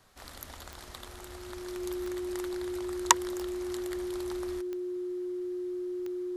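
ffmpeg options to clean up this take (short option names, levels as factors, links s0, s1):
-af "adeclick=t=4,bandreject=f=360:w=30"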